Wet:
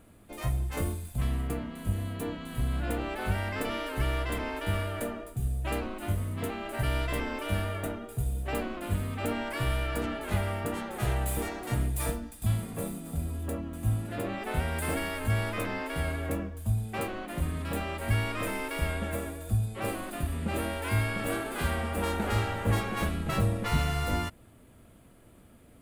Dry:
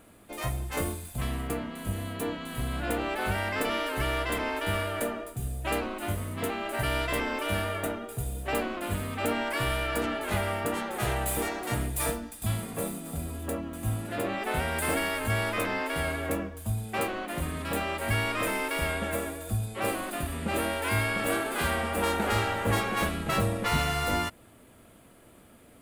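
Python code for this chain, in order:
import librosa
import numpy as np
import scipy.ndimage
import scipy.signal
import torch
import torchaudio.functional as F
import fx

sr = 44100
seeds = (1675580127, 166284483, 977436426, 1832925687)

y = fx.low_shelf(x, sr, hz=200.0, db=10.0)
y = y * 10.0 ** (-5.0 / 20.0)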